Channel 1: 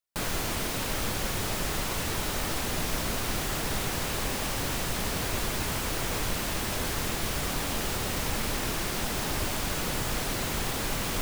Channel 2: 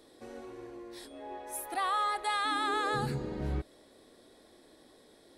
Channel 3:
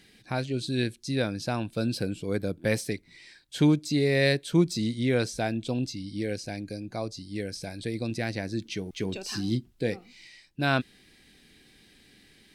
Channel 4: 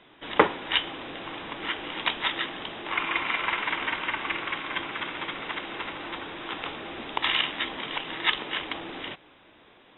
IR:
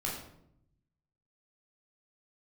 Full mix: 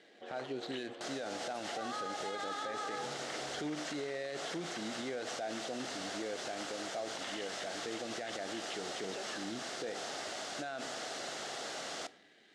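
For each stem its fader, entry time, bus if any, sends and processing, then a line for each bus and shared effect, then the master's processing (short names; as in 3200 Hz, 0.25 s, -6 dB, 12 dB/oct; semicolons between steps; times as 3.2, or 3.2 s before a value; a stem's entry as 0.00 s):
-7.5 dB, 0.85 s, bus B, send -18 dB, dry
+1.5 dB, 0.00 s, bus A, send -10.5 dB, Wiener smoothing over 25 samples; random-step tremolo
+0.5 dB, 0.00 s, bus B, send -22.5 dB, median filter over 9 samples
-18.0 dB, 0.00 s, bus A, no send, steep low-pass 3700 Hz
bus A: 0.0 dB, sample leveller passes 1; compressor, threshold -36 dBFS, peak gain reduction 10.5 dB
bus B: 0.0 dB, limiter -22 dBFS, peak gain reduction 11.5 dB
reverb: on, RT60 0.75 s, pre-delay 13 ms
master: speaker cabinet 440–7300 Hz, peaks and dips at 690 Hz +5 dB, 1000 Hz -8 dB, 2400 Hz -7 dB; limiter -30.5 dBFS, peak gain reduction 11 dB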